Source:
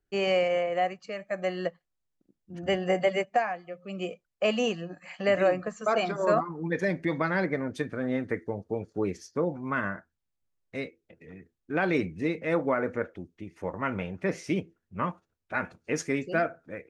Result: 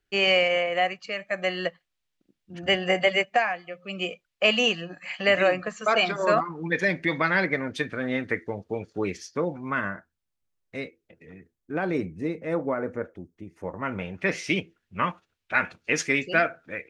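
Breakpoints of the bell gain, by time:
bell 2900 Hz 2.1 oct
9.33 s +11.5 dB
9.95 s +2 dB
11.35 s +2 dB
11.89 s -6.5 dB
13.49 s -6.5 dB
14.01 s +2 dB
14.27 s +13.5 dB

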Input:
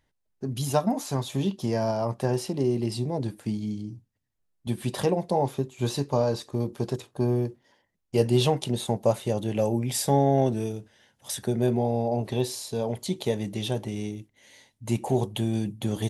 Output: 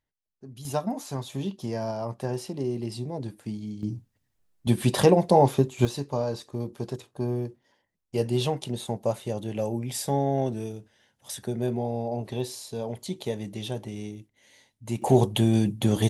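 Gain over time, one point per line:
-13 dB
from 0.65 s -4.5 dB
from 3.83 s +6.5 dB
from 5.85 s -4 dB
from 15.02 s +5.5 dB

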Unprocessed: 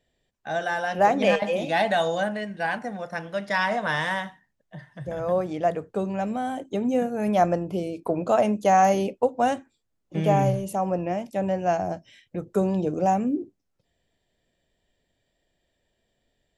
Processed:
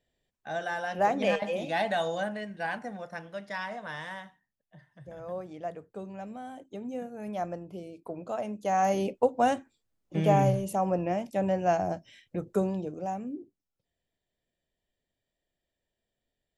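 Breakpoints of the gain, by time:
2.95 s -6 dB
3.75 s -13 dB
8.47 s -13 dB
9.14 s -2 dB
12.5 s -2 dB
12.96 s -12 dB

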